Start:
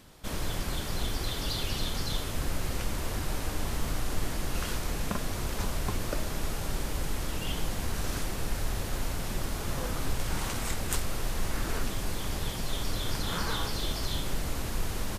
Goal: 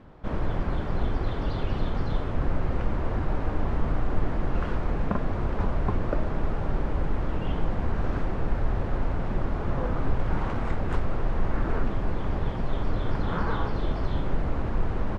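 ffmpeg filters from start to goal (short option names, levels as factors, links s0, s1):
-af "lowpass=1300,volume=2"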